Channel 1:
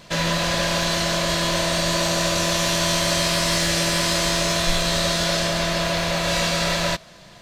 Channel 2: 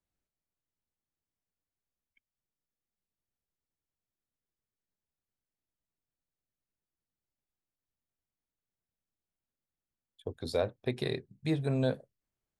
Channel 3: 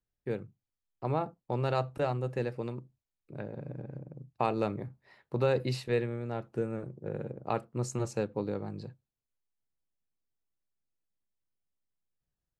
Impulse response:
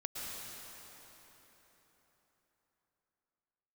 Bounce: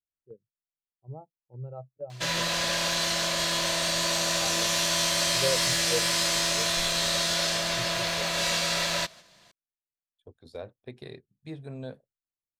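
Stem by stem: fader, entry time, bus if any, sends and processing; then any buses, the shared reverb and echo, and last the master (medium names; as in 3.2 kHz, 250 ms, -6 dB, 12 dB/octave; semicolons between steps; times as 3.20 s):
-6.5 dB, 2.10 s, no send, tilt EQ +2 dB/octave
-9.5 dB, 0.00 s, no send, none
-5.0 dB, 0.00 s, no send, spectral contrast expander 2.5:1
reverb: none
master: gate -46 dBFS, range -6 dB; treble shelf 10 kHz -4.5 dB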